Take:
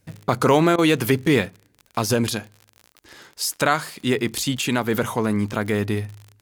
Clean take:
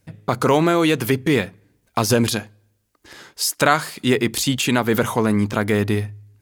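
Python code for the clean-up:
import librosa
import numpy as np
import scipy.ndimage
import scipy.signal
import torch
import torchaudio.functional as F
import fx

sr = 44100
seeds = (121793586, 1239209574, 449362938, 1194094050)

y = fx.fix_declick_ar(x, sr, threshold=6.5)
y = fx.fix_interpolate(y, sr, at_s=(0.76,), length_ms=22.0)
y = fx.gain(y, sr, db=fx.steps((0.0, 0.0), (1.48, 3.5)))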